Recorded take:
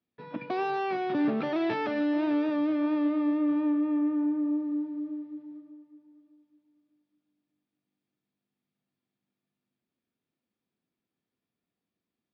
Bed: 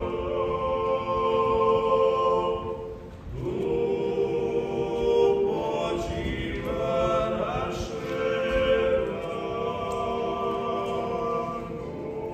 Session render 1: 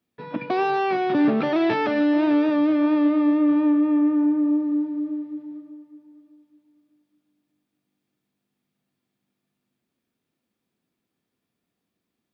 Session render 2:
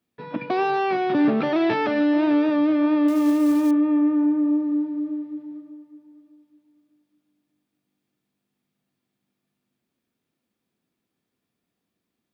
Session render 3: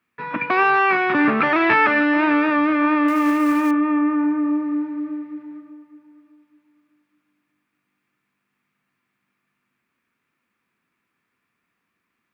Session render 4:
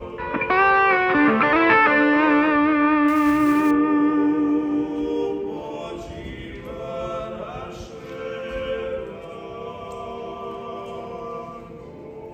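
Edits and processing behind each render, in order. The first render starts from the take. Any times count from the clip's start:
level +7.5 dB
0:03.08–0:03.71: log-companded quantiser 6 bits
flat-topped bell 1,600 Hz +13.5 dB
mix in bed −4.5 dB

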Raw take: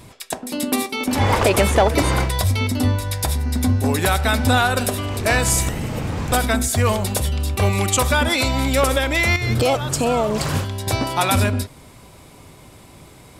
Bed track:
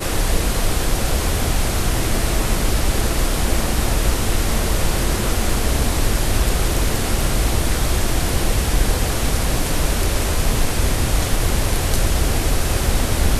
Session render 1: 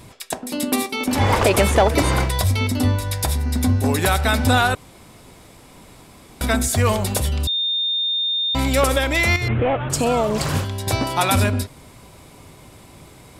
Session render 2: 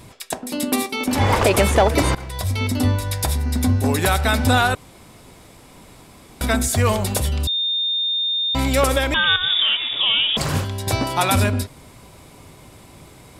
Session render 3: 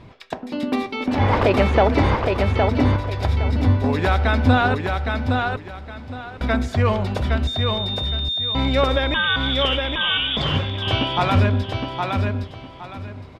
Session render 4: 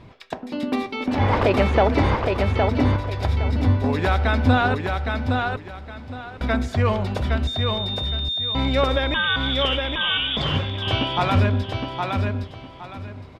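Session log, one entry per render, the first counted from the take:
0:04.75–0:06.41: fill with room tone; 0:07.47–0:08.55: beep over 3,640 Hz −18.5 dBFS; 0:09.48–0:09.90: variable-slope delta modulation 16 kbit/s
0:02.15–0:02.72: fade in, from −19.5 dB; 0:09.14–0:10.37: voice inversion scrambler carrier 3,600 Hz
high-frequency loss of the air 250 metres; repeating echo 814 ms, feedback 25%, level −4 dB
level −1.5 dB

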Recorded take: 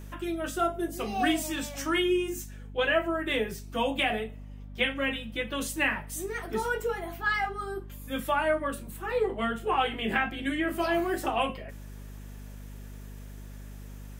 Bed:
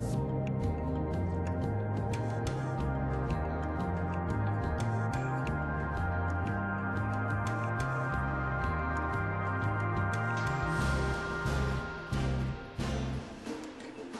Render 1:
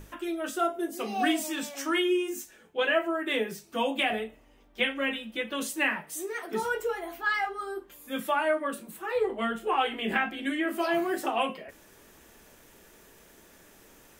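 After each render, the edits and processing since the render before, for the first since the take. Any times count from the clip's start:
mains-hum notches 50/100/150/200/250 Hz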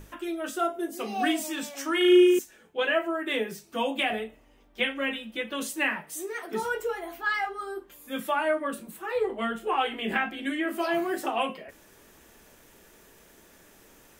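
0:01.97–0:02.39: flutter between parallel walls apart 6.2 metres, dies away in 0.97 s
0:08.38–0:08.90: low-shelf EQ 140 Hz +8 dB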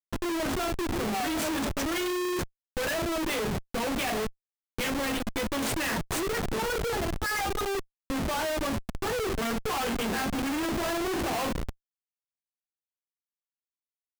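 comparator with hysteresis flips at −35 dBFS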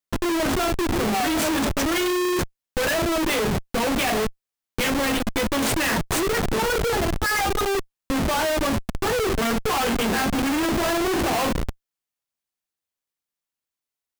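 level +7 dB

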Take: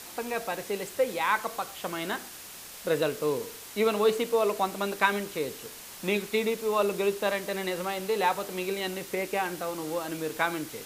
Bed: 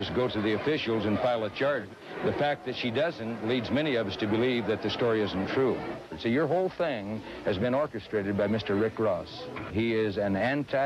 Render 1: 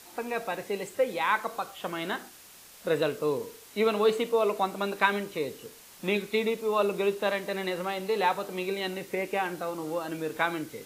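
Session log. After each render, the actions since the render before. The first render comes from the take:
noise reduction from a noise print 7 dB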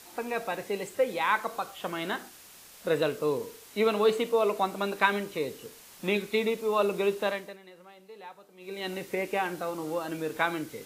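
0:07.22–0:08.95: duck −20 dB, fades 0.36 s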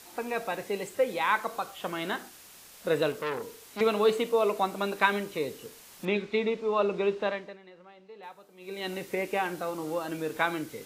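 0:03.12–0:03.81: saturating transformer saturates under 2,300 Hz
0:06.05–0:08.23: high-frequency loss of the air 140 metres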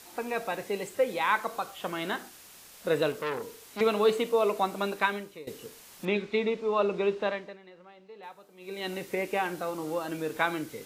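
0:04.86–0:05.47: fade out linear, to −18 dB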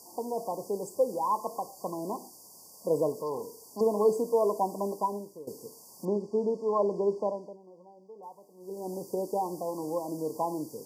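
brick-wall band-stop 1,100–4,500 Hz
high-pass filter 120 Hz 12 dB per octave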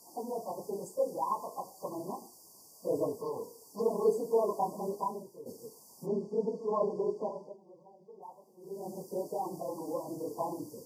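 random phases in long frames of 50 ms
flanger 0.78 Hz, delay 6.4 ms, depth 2.5 ms, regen −88%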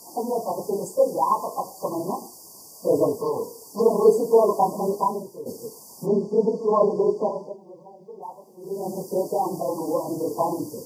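level +11.5 dB

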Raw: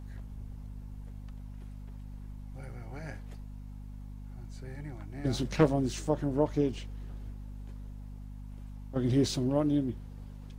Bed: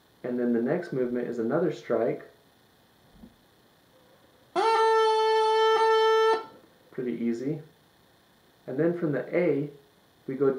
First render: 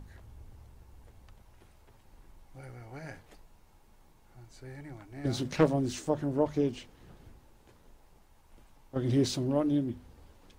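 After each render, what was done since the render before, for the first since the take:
mains-hum notches 50/100/150/200/250 Hz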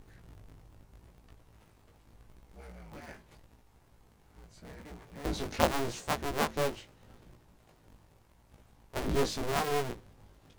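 sub-harmonics by changed cycles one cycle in 2, inverted
chorus effect 0.82 Hz, delay 16.5 ms, depth 2.8 ms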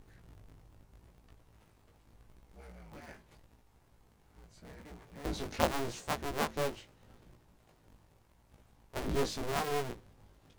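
level −3 dB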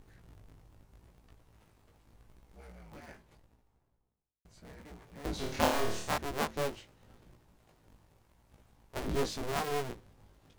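0:02.96–0:04.45: fade out and dull
0:05.36–0:06.18: flutter between parallel walls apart 4.6 metres, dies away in 0.56 s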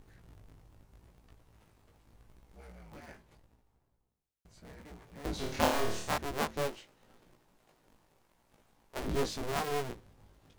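0:06.67–0:08.99: parametric band 70 Hz −14 dB 2 octaves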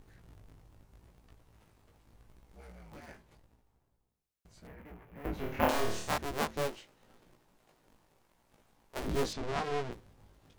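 0:04.67–0:05.69: flat-topped bell 5,800 Hz −16 dB
0:09.33–0:09.92: high-frequency loss of the air 100 metres

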